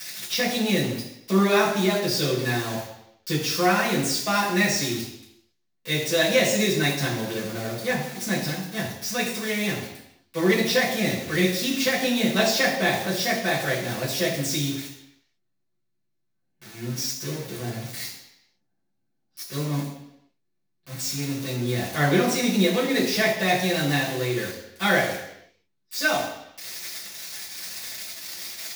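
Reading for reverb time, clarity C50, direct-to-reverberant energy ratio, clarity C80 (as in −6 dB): 0.80 s, 5.0 dB, −7.5 dB, 7.5 dB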